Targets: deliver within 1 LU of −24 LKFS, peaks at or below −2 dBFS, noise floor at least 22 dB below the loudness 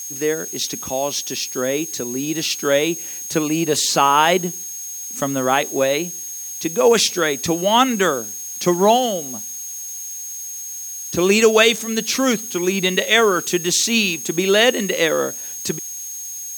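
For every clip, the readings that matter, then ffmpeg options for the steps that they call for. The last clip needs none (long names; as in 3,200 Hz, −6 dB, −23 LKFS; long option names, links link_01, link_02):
interfering tone 6,500 Hz; level of the tone −29 dBFS; background noise floor −31 dBFS; target noise floor −41 dBFS; integrated loudness −19.0 LKFS; sample peak −2.0 dBFS; target loudness −24.0 LKFS
→ -af "bandreject=frequency=6500:width=30"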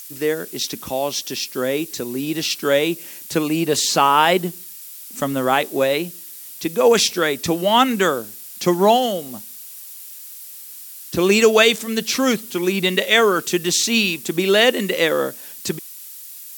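interfering tone none found; background noise floor −38 dBFS; target noise floor −41 dBFS
→ -af "afftdn=noise_reduction=6:noise_floor=-38"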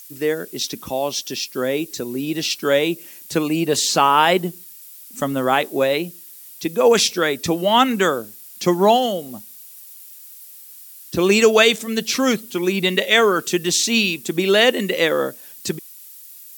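background noise floor −42 dBFS; integrated loudness −18.5 LKFS; sample peak −2.0 dBFS; target loudness −24.0 LKFS
→ -af "volume=-5.5dB"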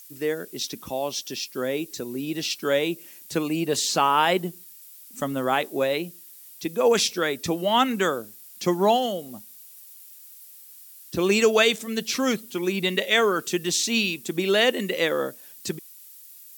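integrated loudness −24.0 LKFS; sample peak −7.5 dBFS; background noise floor −47 dBFS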